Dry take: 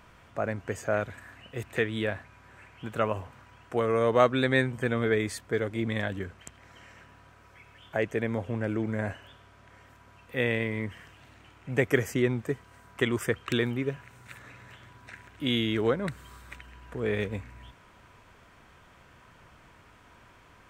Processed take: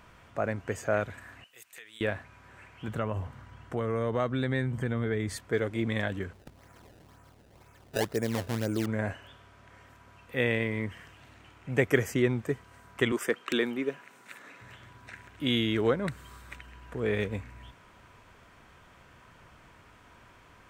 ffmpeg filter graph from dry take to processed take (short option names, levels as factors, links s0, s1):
-filter_complex "[0:a]asettb=1/sr,asplit=3[s0][s1][s2];[s0]atrim=end=1.444[s3];[s1]atrim=start=1.44:end=2.01,asetpts=PTS-STARTPTS,afade=t=in:d=0.004:c=qsin,afade=t=out:st=0.566:d=0.004:c=qsin,aderivative,acompressor=threshold=0.00708:ratio=5:attack=3.2:release=140:knee=1:detection=peak[s4];[s2]atrim=start=2.006[s5];[s3][s4]acrossfade=d=0.004:c1=hsin:c2=qsin[s6];[s6][s5]acrossfade=d=0.004:c1=qsin:c2=hsin,asettb=1/sr,asplit=3[s7][s8][s9];[s7]atrim=end=2.884[s10];[s8]atrim=start=2.88:end=5.36,asetpts=PTS-STARTPTS,afade=t=in:d=0.004:c=qsin,afade=t=out:st=2.476:d=0.004:c=qsin,bass=f=250:g=8,treble=f=4000:g=-2,bandreject=f=2500:w=12,acompressor=threshold=0.0316:ratio=2:attack=3.2:release=140:knee=1:detection=peak[s11];[s9]atrim=start=5.356[s12];[s10][s11]acrossfade=d=0.004:c1=hsin:c2=qsin[s13];[s13][s12]acrossfade=d=0.004:c1=qsin:c2=hsin,asettb=1/sr,asplit=3[s14][s15][s16];[s14]atrim=end=6.334[s17];[s15]atrim=start=6.33:end=8.86,asetpts=PTS-STARTPTS,afade=t=in:d=0.004:c=qsin,afade=t=out:st=2.526:d=0.004:c=qsin,lowpass=f=1300:p=1,acrusher=samples=23:mix=1:aa=0.000001:lfo=1:lforange=36.8:lforate=2[s18];[s16]atrim=start=8.856[s19];[s17][s18]acrossfade=d=0.004:c1=hsin:c2=qsin[s20];[s20][s19]acrossfade=d=0.004:c1=qsin:c2=hsin,asettb=1/sr,asplit=3[s21][s22][s23];[s21]atrim=end=13.124[s24];[s22]atrim=start=13.12:end=14.61,asetpts=PTS-STARTPTS,afade=t=in:d=0.004:c=qsin,afade=t=out:st=1.486:d=0.004:c=qsin,highpass=f=210:w=0.5412,highpass=f=210:w=1.3066,asoftclip=type=hard:threshold=0.178[s25];[s23]atrim=start=14.606[s26];[s24][s25]acrossfade=d=0.004:c1=hsin:c2=qsin[s27];[s27][s26]acrossfade=d=0.004:c1=qsin:c2=hsin"